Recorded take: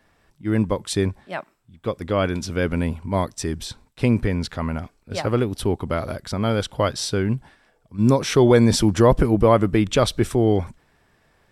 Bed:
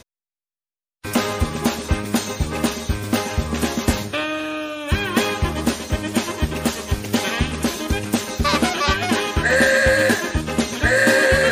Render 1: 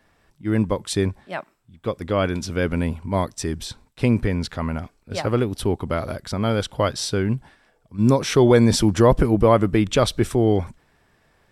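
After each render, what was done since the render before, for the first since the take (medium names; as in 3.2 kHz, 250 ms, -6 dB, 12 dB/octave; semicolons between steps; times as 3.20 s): no audible change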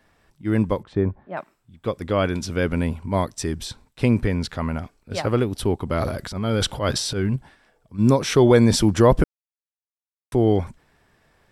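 0.83–1.37 s: low-pass 1.2 kHz; 5.91–7.36 s: transient shaper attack -10 dB, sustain +9 dB; 9.24–10.32 s: mute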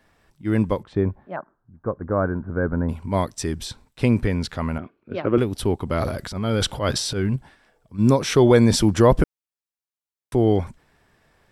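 1.36–2.89 s: Chebyshev low-pass 1.6 kHz, order 5; 4.78–5.38 s: cabinet simulation 140–2700 Hz, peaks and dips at 240 Hz +3 dB, 350 Hz +8 dB, 810 Hz -8 dB, 1.9 kHz -6 dB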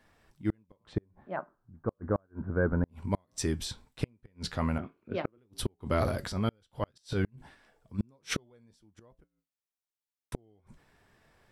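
flange 0.87 Hz, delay 8.3 ms, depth 1.8 ms, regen -72%; inverted gate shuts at -17 dBFS, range -41 dB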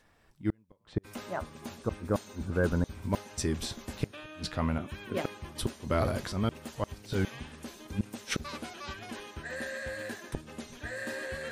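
add bed -22.5 dB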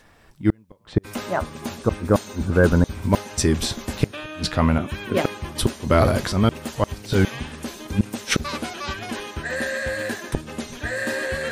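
trim +11.5 dB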